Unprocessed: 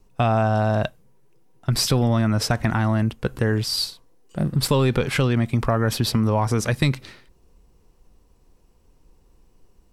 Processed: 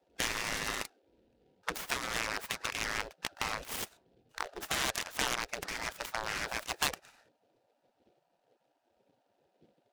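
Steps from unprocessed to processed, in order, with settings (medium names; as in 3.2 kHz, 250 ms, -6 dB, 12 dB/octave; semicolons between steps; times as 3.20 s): local Wiener filter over 41 samples; spectral gate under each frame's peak -30 dB weak; delay time shaken by noise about 2.8 kHz, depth 0.049 ms; trim +8.5 dB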